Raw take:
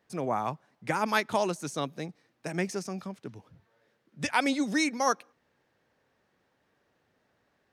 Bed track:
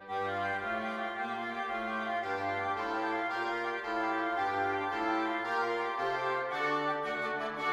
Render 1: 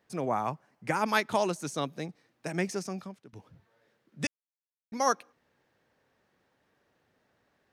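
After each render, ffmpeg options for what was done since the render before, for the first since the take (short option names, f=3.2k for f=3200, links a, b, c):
-filter_complex "[0:a]asettb=1/sr,asplit=3[a][b][c];[a]atrim=end=0.414[d];[b]atrim=start=0.41:end=0.97,asetpts=PTS-STARTPTS,afade=t=in:d=0.004:c=qsin,afade=t=out:st=0.556:d=0.004:c=qsin,equalizer=f=3.7k:w=4.8:g=-8[e];[c]atrim=start=0.966[f];[d][e]acrossfade=d=0.004:c1=hsin:c2=qsin[g];[g][f]acrossfade=d=0.004:c1=qsin:c2=hsin,asplit=4[h][i][j][k];[h]atrim=end=3.33,asetpts=PTS-STARTPTS,afade=t=out:st=2.92:d=0.41:silence=0.105925[l];[i]atrim=start=3.33:end=4.27,asetpts=PTS-STARTPTS,afade=t=in:d=0.004:c=hsin:silence=0.105925,afade=t=out:st=0.936:d=0.004:c=hsin[m];[j]atrim=start=4.27:end=4.92,asetpts=PTS-STARTPTS,volume=0[n];[k]atrim=start=4.92,asetpts=PTS-STARTPTS,afade=t=in:d=0.004:c=hsin[o];[l][m][n][o]concat=n=4:v=0:a=1"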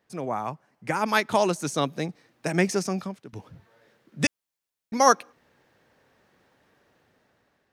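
-af "dynaudnorm=f=500:g=5:m=9dB"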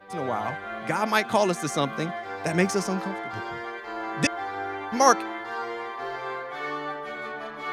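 -filter_complex "[1:a]volume=-0.5dB[a];[0:a][a]amix=inputs=2:normalize=0"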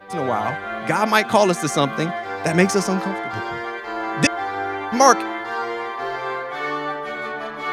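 -af "volume=6.5dB,alimiter=limit=-1dB:level=0:latency=1"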